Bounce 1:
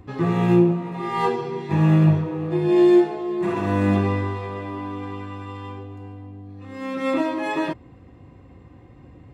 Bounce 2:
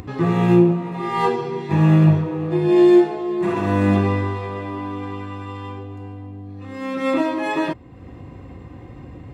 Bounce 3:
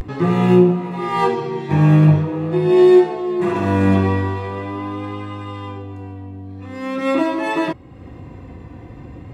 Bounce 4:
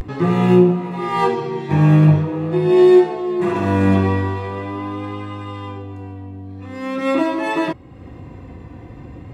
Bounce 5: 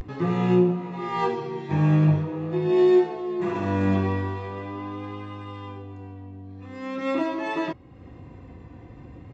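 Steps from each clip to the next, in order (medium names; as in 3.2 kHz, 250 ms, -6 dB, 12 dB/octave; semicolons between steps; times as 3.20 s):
upward compressor, threshold -32 dBFS; trim +2.5 dB
vibrato 0.43 Hz 50 cents; trim +2 dB
no audible change
resampled via 16 kHz; trim -7.5 dB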